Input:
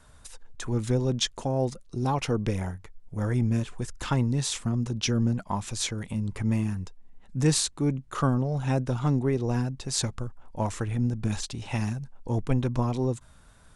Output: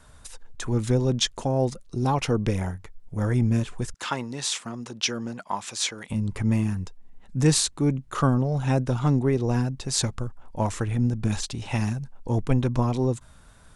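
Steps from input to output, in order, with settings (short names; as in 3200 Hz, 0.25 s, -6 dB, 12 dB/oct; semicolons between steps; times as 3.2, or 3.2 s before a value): 3.94–6.1 weighting filter A; gain +3 dB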